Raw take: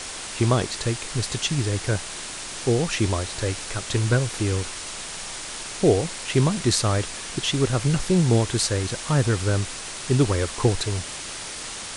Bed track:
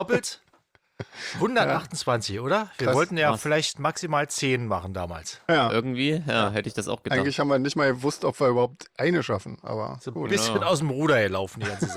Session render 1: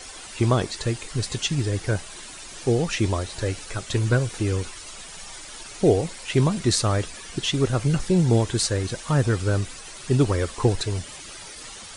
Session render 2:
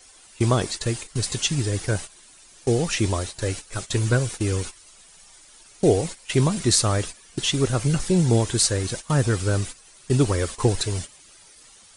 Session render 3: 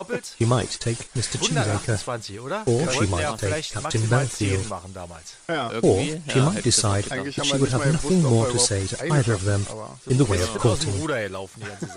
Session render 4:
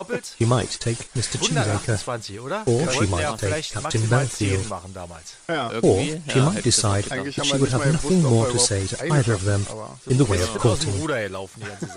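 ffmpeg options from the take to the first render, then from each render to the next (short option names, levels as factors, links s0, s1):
-af "afftdn=nr=11:nf=-35"
-af "agate=range=0.2:threshold=0.0251:ratio=16:detection=peak,highshelf=f=7500:g=10.5"
-filter_complex "[1:a]volume=0.562[s0];[0:a][s0]amix=inputs=2:normalize=0"
-af "volume=1.12,alimiter=limit=0.708:level=0:latency=1"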